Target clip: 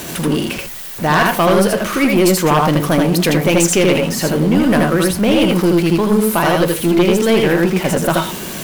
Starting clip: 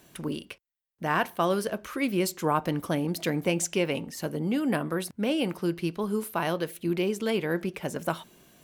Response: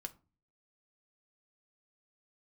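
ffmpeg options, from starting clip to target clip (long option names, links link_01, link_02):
-filter_complex "[0:a]aeval=exprs='val(0)+0.5*0.0158*sgn(val(0))':channel_layout=same,asplit=2[link_01][link_02];[1:a]atrim=start_sample=2205,adelay=80[link_03];[link_02][link_03]afir=irnorm=-1:irlink=0,volume=1.5dB[link_04];[link_01][link_04]amix=inputs=2:normalize=0,aeval=exprs='0.376*(cos(1*acos(clip(val(0)/0.376,-1,1)))-cos(1*PI/2))+0.0944*(cos(5*acos(clip(val(0)/0.376,-1,1)))-cos(5*PI/2))+0.0376*(cos(6*acos(clip(val(0)/0.376,-1,1)))-cos(6*PI/2))':channel_layout=same,volume=5.5dB"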